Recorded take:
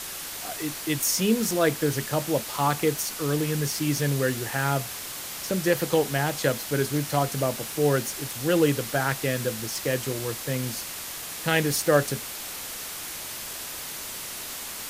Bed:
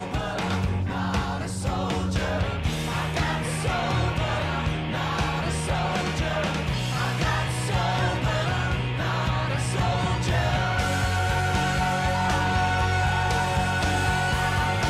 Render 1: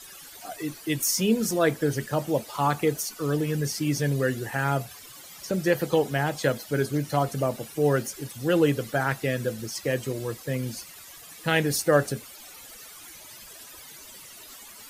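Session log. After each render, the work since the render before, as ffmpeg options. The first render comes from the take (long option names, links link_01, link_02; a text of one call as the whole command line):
ffmpeg -i in.wav -af "afftdn=noise_reduction=15:noise_floor=-36" out.wav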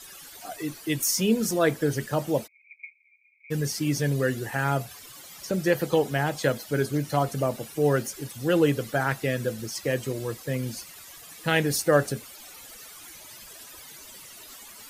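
ffmpeg -i in.wav -filter_complex "[0:a]asplit=3[link_01][link_02][link_03];[link_01]afade=type=out:start_time=2.46:duration=0.02[link_04];[link_02]asuperpass=centerf=2300:order=12:qfactor=6.9,afade=type=in:start_time=2.46:duration=0.02,afade=type=out:start_time=3.5:duration=0.02[link_05];[link_03]afade=type=in:start_time=3.5:duration=0.02[link_06];[link_04][link_05][link_06]amix=inputs=3:normalize=0" out.wav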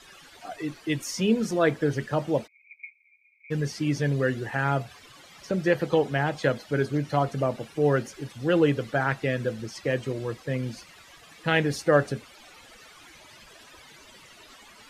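ffmpeg -i in.wav -af "lowpass=2800,aemphasis=mode=production:type=50kf" out.wav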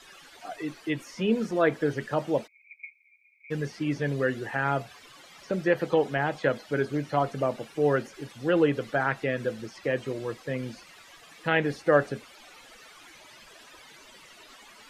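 ffmpeg -i in.wav -filter_complex "[0:a]acrossover=split=3100[link_01][link_02];[link_02]acompressor=threshold=-50dB:ratio=4:attack=1:release=60[link_03];[link_01][link_03]amix=inputs=2:normalize=0,equalizer=frequency=76:width_type=o:width=2.2:gain=-9" out.wav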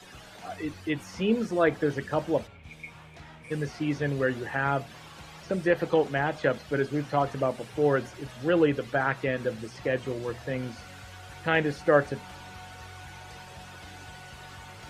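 ffmpeg -i in.wav -i bed.wav -filter_complex "[1:a]volume=-22.5dB[link_01];[0:a][link_01]amix=inputs=2:normalize=0" out.wav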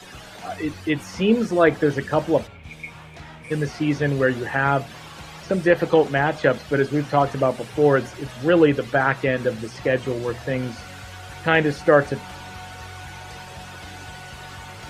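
ffmpeg -i in.wav -af "volume=7dB,alimiter=limit=-3dB:level=0:latency=1" out.wav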